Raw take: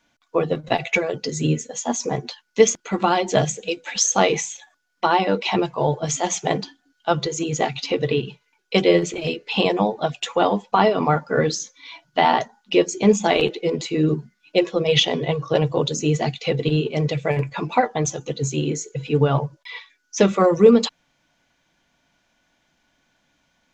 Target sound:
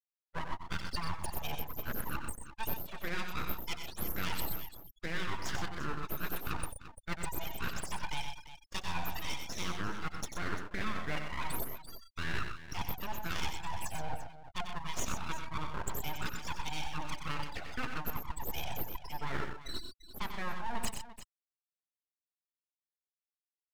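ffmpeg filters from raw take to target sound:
-af "highpass=570,afftfilt=real='re*gte(hypot(re,im),0.0562)':imag='im*gte(hypot(re,im),0.0562)':win_size=1024:overlap=0.75,areverse,acompressor=threshold=0.0158:ratio=6,areverse,aeval=exprs='abs(val(0))':c=same,aecho=1:1:92|126|344:0.398|0.355|0.211,volume=1.33"

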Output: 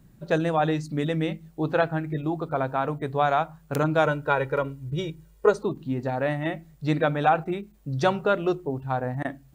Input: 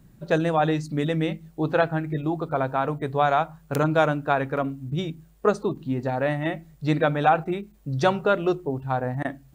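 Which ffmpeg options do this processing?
-filter_complex "[0:a]asettb=1/sr,asplit=3[s0][s1][s2];[s0]atrim=end=4.064[s3];[s1]atrim=start=4.06:end=5.59,asetpts=PTS-STARTPTS,afade=t=in:d=0.004:c=qsin,afade=t=out:st=1.526:d=0.004:c=qsin,aecho=1:1:2.1:0.73,atrim=end_sample=67473[s4];[s2]atrim=start=5.586[s5];[s3][s4]acrossfade=d=0.004:c1=hsin:c2=qsin[s6];[s6][s5]acrossfade=d=0.004:c1=qsin:c2=hsin,volume=0.841"

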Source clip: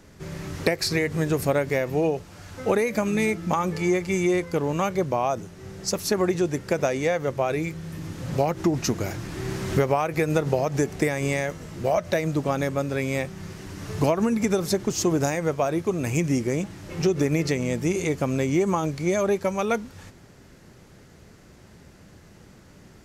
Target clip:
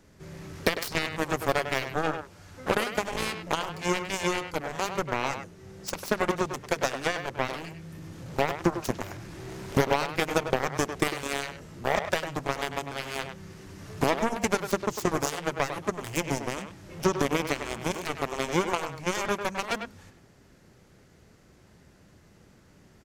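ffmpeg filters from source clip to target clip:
-filter_complex "[0:a]aeval=exprs='0.398*(cos(1*acos(clip(val(0)/0.398,-1,1)))-cos(1*PI/2))+0.0891*(cos(7*acos(clip(val(0)/0.398,-1,1)))-cos(7*PI/2))':c=same,asplit=2[s0][s1];[s1]adelay=100,highpass=300,lowpass=3400,asoftclip=type=hard:threshold=0.141,volume=0.447[s2];[s0][s2]amix=inputs=2:normalize=0,volume=0.794"

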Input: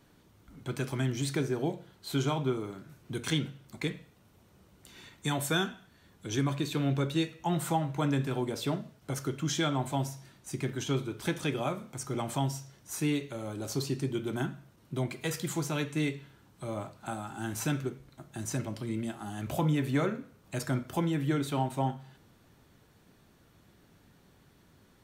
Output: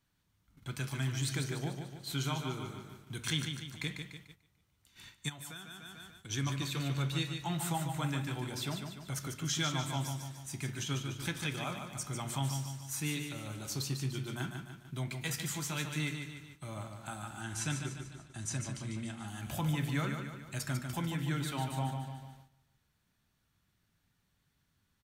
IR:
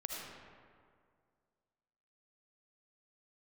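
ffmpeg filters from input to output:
-filter_complex "[0:a]asettb=1/sr,asplit=3[s0][s1][s2];[s0]atrim=end=17.414[s3];[s1]atrim=start=17.41:end=19.28,asetpts=PTS-STARTPTS,afade=t=in:d=0.004:c=qsin,afade=t=out:st=1.866:d=0.004:c=qsin,lowpass=f=9900:w=0.5412,lowpass=f=9900:w=1.3066[s4];[s2]atrim=start=19.276[s5];[s3][s4]acrossfade=d=0.004:c1=hsin:c2=qsin[s6];[s6][s5]acrossfade=d=0.004:c1=qsin:c2=hsin,aecho=1:1:147|294|441|588|735|882:0.473|0.237|0.118|0.0591|0.0296|0.0148,asplit=3[s7][s8][s9];[s7]afade=t=out:st=5.28:d=0.02[s10];[s8]acompressor=threshold=0.0112:ratio=16,afade=t=in:st=5.28:d=0.02,afade=t=out:st=6.29:d=0.02[s11];[s9]afade=t=in:st=6.29:d=0.02[s12];[s10][s11][s12]amix=inputs=3:normalize=0,equalizer=f=420:w=0.63:g=-13,agate=range=0.251:threshold=0.00224:ratio=16:detection=peak"

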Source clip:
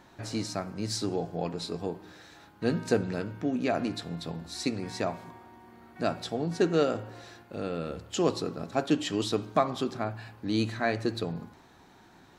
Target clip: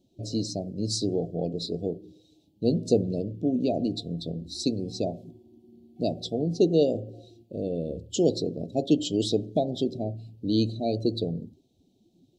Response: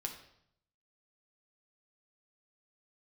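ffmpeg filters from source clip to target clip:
-af "asuperstop=centerf=1400:order=8:qfactor=0.58,afftdn=nr=16:nf=-44,volume=1.58"

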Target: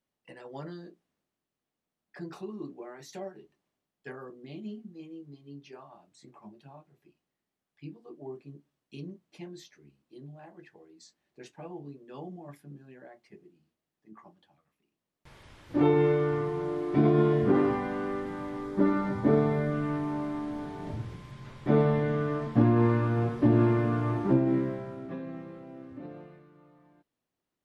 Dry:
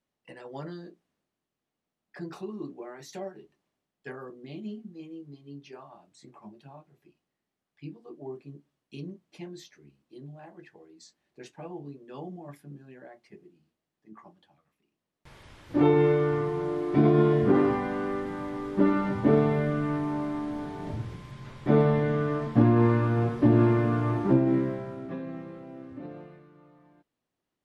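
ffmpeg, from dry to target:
-filter_complex "[0:a]asettb=1/sr,asplit=3[s0][s1][s2];[s0]atrim=end=18.644[s3];[s1]atrim=start=18.64:end=19.73,asetpts=PTS-STARTPTS,afade=t=in:d=0.004:c=qsin,afade=t=out:st=1.086:d=0.004:c=qsin,equalizer=f=2800:t=o:w=0.31:g=-8[s4];[s2]atrim=start=19.726[s5];[s3][s4]acrossfade=d=0.004:c1=hsin:c2=qsin[s6];[s6][s5]acrossfade=d=0.004:c1=qsin:c2=hsin,volume=0.794"

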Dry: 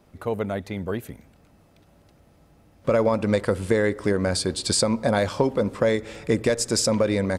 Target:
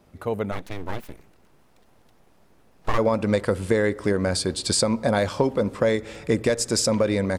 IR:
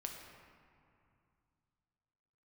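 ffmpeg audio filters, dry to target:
-filter_complex "[0:a]asplit=3[s0][s1][s2];[s0]afade=t=out:st=0.51:d=0.02[s3];[s1]aeval=exprs='abs(val(0))':c=same,afade=t=in:st=0.51:d=0.02,afade=t=out:st=2.97:d=0.02[s4];[s2]afade=t=in:st=2.97:d=0.02[s5];[s3][s4][s5]amix=inputs=3:normalize=0"

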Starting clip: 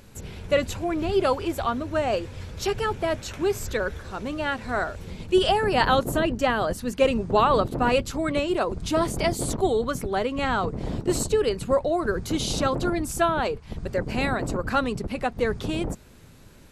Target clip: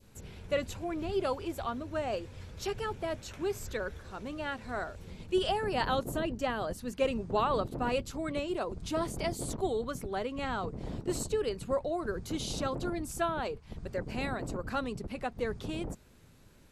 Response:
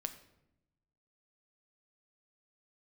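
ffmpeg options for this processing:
-af "adynamicequalizer=threshold=0.0141:dfrequency=1600:dqfactor=0.93:tfrequency=1600:tqfactor=0.93:attack=5:release=100:ratio=0.375:range=1.5:mode=cutabove:tftype=bell,volume=0.355"

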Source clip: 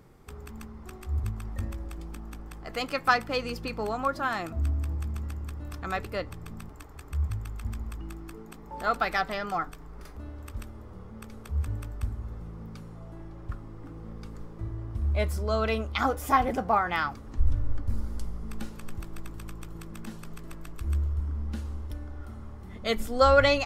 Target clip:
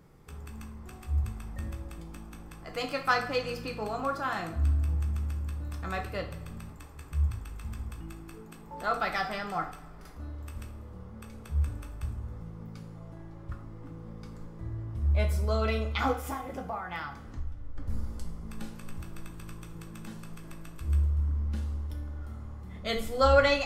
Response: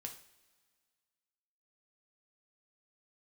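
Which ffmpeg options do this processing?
-filter_complex "[0:a]asplit=3[s0][s1][s2];[s0]afade=t=out:st=16.11:d=0.02[s3];[s1]acompressor=threshold=0.0282:ratio=6,afade=t=in:st=16.11:d=0.02,afade=t=out:st=17.76:d=0.02[s4];[s2]afade=t=in:st=17.76:d=0.02[s5];[s3][s4][s5]amix=inputs=3:normalize=0[s6];[1:a]atrim=start_sample=2205[s7];[s6][s7]afir=irnorm=-1:irlink=0,volume=1.19"

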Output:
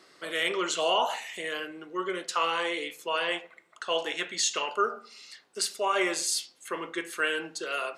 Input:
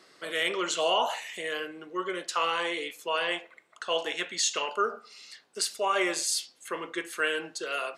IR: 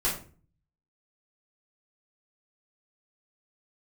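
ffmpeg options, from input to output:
-filter_complex "[0:a]asplit=2[s0][s1];[1:a]atrim=start_sample=2205,lowpass=2400[s2];[s1][s2]afir=irnorm=-1:irlink=0,volume=0.0794[s3];[s0][s3]amix=inputs=2:normalize=0"

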